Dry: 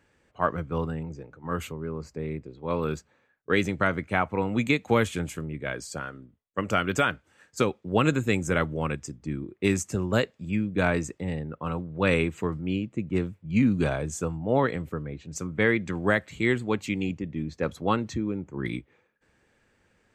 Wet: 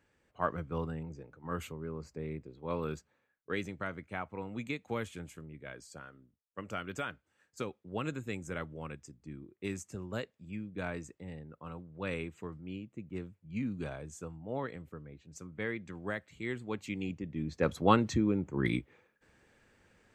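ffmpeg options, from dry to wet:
ffmpeg -i in.wav -af "volume=7.5dB,afade=type=out:start_time=2.64:duration=1.14:silence=0.446684,afade=type=in:start_time=16.44:duration=0.88:silence=0.421697,afade=type=in:start_time=17.32:duration=0.48:silence=0.446684" out.wav

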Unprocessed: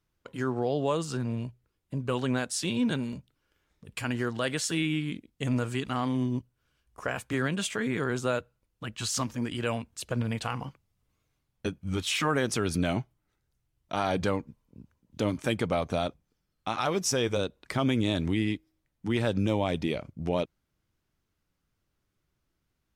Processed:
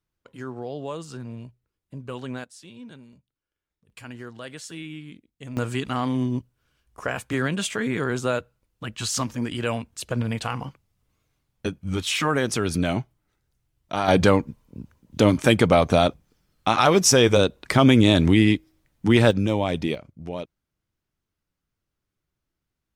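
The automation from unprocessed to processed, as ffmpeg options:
ffmpeg -i in.wav -af "asetnsamples=nb_out_samples=441:pad=0,asendcmd='2.44 volume volume -15.5dB;3.9 volume volume -8.5dB;5.57 volume volume 4dB;14.08 volume volume 11dB;19.31 volume volume 4dB;19.95 volume volume -4dB',volume=-5dB" out.wav

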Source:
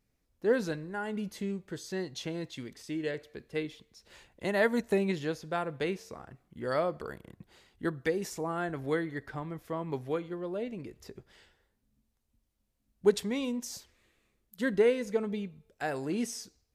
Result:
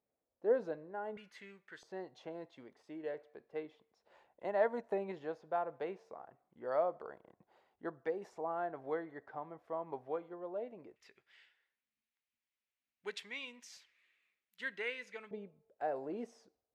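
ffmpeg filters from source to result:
ffmpeg -i in.wav -af "asetnsamples=nb_out_samples=441:pad=0,asendcmd='1.17 bandpass f 1800;1.83 bandpass f 740;10.96 bandpass f 2300;15.31 bandpass f 620',bandpass=frequency=630:width_type=q:width=2:csg=0" out.wav

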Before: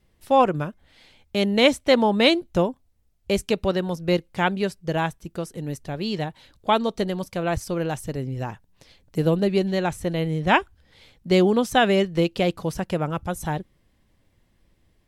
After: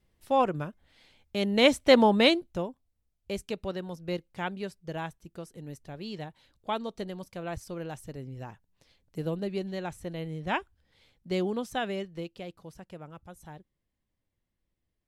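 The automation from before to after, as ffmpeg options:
ffmpeg -i in.wav -af "volume=-0.5dB,afade=type=in:start_time=1.4:duration=0.6:silence=0.473151,afade=type=out:start_time=2:duration=0.58:silence=0.281838,afade=type=out:start_time=11.54:duration=0.92:silence=0.398107" out.wav

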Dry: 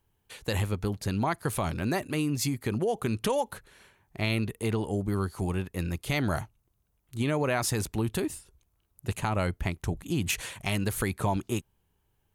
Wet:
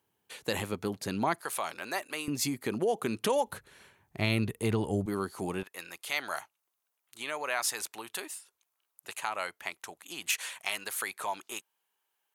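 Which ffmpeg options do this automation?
ffmpeg -i in.wav -af "asetnsamples=nb_out_samples=441:pad=0,asendcmd='1.41 highpass f 700;2.28 highpass f 230;3.47 highpass f 76;5.06 highpass f 240;5.63 highpass f 870',highpass=210" out.wav

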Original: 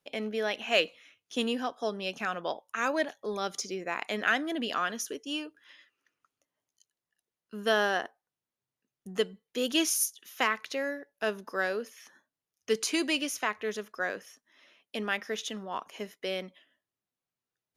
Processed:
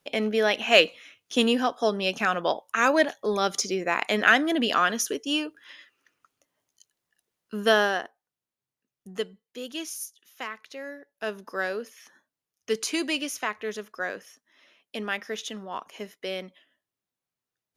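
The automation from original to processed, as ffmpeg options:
ffmpeg -i in.wav -af "volume=17dB,afade=type=out:start_time=7.55:duration=0.5:silence=0.354813,afade=type=out:start_time=9.1:duration=0.6:silence=0.446684,afade=type=in:start_time=10.68:duration=0.87:silence=0.354813" out.wav

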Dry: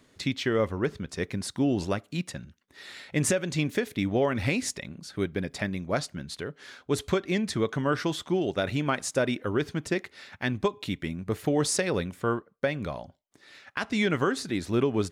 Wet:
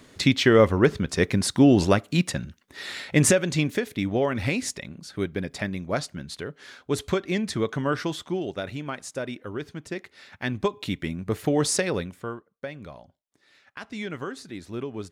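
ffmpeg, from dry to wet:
ffmpeg -i in.wav -af "volume=17.5dB,afade=type=out:start_time=2.89:duration=0.92:silence=0.398107,afade=type=out:start_time=7.86:duration=0.95:silence=0.446684,afade=type=in:start_time=9.88:duration=0.98:silence=0.375837,afade=type=out:start_time=11.79:duration=0.54:silence=0.298538" out.wav

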